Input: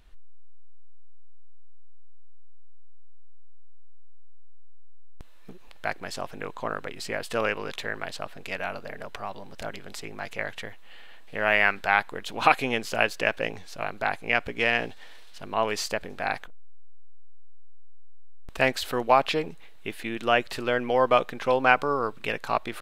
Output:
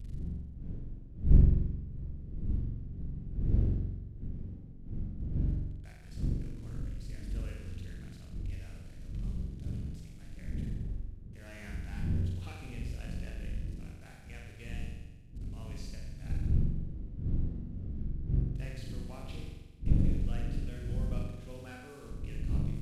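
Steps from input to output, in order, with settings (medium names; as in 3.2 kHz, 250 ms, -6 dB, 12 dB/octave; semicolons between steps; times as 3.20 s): one-bit delta coder 64 kbps, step -31 dBFS; wind noise 220 Hz -24 dBFS; amplifier tone stack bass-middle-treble 10-0-1; on a send: flutter echo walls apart 7.5 m, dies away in 1.1 s; on the sum: loudspeaker Doppler distortion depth 0.39 ms; trim -3 dB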